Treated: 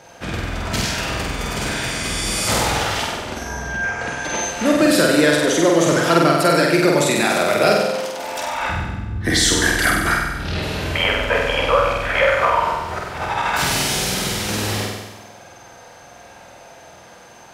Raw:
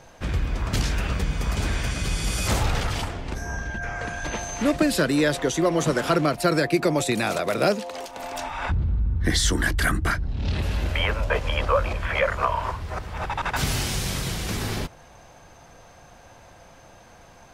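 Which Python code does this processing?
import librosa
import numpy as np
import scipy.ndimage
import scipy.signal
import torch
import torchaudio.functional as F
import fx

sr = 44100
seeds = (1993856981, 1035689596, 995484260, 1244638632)

p1 = fx.highpass(x, sr, hz=250.0, slope=6)
p2 = fx.notch(p1, sr, hz=1100.0, q=17.0)
p3 = p2 + fx.room_flutter(p2, sr, wall_m=8.2, rt60_s=1.1, dry=0)
y = F.gain(torch.from_numpy(p3), 5.0).numpy()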